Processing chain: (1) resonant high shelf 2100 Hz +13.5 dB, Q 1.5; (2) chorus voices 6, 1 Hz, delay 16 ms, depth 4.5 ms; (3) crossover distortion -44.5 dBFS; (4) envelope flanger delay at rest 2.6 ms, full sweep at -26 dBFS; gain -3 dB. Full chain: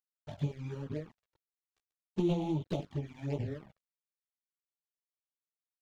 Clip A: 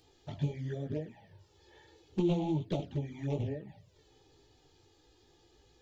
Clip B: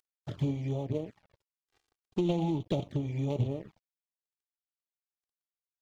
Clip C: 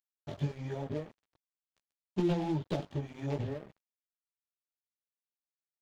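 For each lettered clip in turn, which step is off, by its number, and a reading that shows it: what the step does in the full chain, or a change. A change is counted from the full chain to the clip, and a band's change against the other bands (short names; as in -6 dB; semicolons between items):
3, distortion -17 dB; 2, 2 kHz band -2.5 dB; 4, momentary loudness spread change -1 LU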